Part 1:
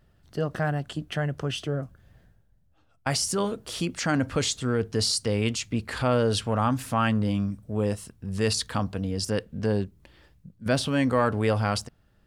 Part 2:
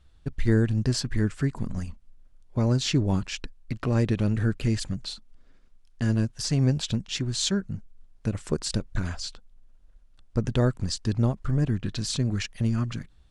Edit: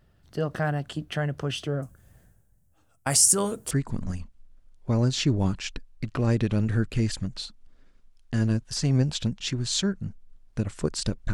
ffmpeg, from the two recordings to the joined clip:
-filter_complex "[0:a]asettb=1/sr,asplit=3[a][b][c];[a]atrim=end=1.824[d];[b]atrim=start=1.82:end=3.71,asetpts=PTS-STARTPTS,afade=t=in:d=0.004:c=qsin,afade=t=out:st=1.886:d=0.004:c=qsin,highshelf=f=5.8k:t=q:w=1.5:g=11[e];[c]atrim=start=3.706[f];[d][e]acrossfade=d=0.004:c1=hsin:c2=qsin[g];[g][f]acrossfade=d=0.004:c1=qsin:c2=hsin,apad=whole_dur=11.33,atrim=end=11.33,atrim=end=3.712[h];[1:a]atrim=start=1.388:end=9.01[i];[h][i]acrossfade=d=0.004:c1=hsin:c2=hsin"

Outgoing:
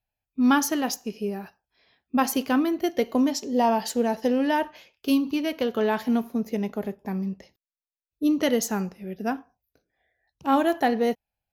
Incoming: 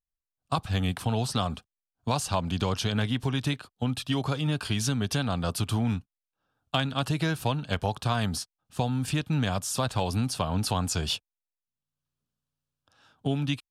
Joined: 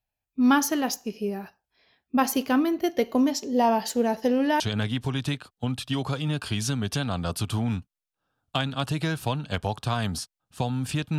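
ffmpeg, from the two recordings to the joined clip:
-filter_complex "[0:a]apad=whole_dur=11.18,atrim=end=11.18,atrim=end=4.602[a];[1:a]atrim=start=2.788:end=9.37[b];[a][b]acrossfade=d=0.004:c1=hsin:c2=hsin"

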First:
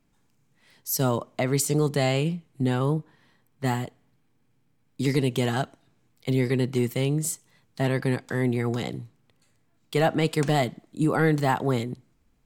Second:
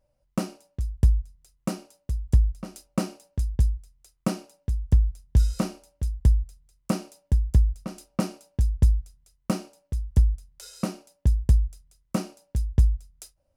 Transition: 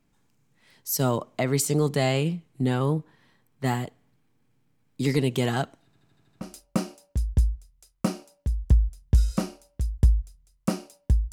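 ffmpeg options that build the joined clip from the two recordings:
-filter_complex "[0:a]apad=whole_dur=11.32,atrim=end=11.32,asplit=7[a][b][c][d][e][f][g];[a]atrim=end=5.932[h];[b]atrim=start=5.848:end=5.932[i];[c]atrim=start=5.848:end=5.932[j];[d]atrim=start=5.848:end=5.932[k];[e]atrim=start=5.848:end=5.932[l];[f]atrim=start=5.848:end=5.932[m];[g]atrim=start=5.848:end=5.932[n];[1:a]atrim=start=2.628:end=7.54[o];[h][i]acrossfade=d=0.004:c1=hsin:c2=hsin[p];[p][j]acrossfade=d=0.004:c1=hsin:c2=hsin[q];[q][k]acrossfade=d=0.004:c1=hsin:c2=hsin[r];[r][l]acrossfade=d=0.004:c1=hsin:c2=hsin[s];[s][m]acrossfade=d=0.004:c1=hsin:c2=hsin[t];[t][n]acrossfade=d=0.004:c1=hsin:c2=hsin[u];[u][o]acrossfade=d=0.004:c1=hsin:c2=hsin"

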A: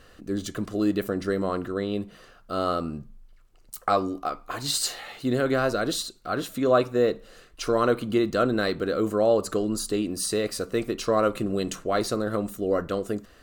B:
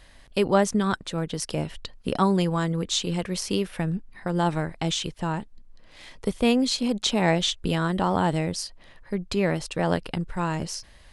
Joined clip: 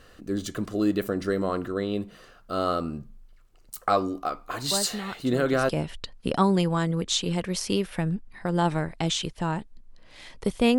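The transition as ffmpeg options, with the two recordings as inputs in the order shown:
-filter_complex "[1:a]asplit=2[a][b];[0:a]apad=whole_dur=10.78,atrim=end=10.78,atrim=end=5.692[c];[b]atrim=start=1.498:end=6.59[d];[a]atrim=start=0.52:end=1.5,asetpts=PTS-STARTPTS,volume=-11dB,afade=t=in:d=0.004:c=hsin,afade=t=out:st=0.976:d=0.004:c=hsin,adelay=4710[e];[c][d]acrossfade=d=0.004:c1=hsin:c2=hsin[f];[f][e]amix=inputs=2:normalize=0"

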